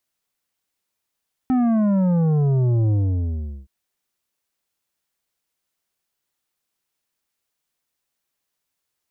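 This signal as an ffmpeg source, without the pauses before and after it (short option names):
-f lavfi -i "aevalsrc='0.15*clip((2.17-t)/0.76,0,1)*tanh(2.82*sin(2*PI*260*2.17/log(65/260)*(exp(log(65/260)*t/2.17)-1)))/tanh(2.82)':d=2.17:s=44100"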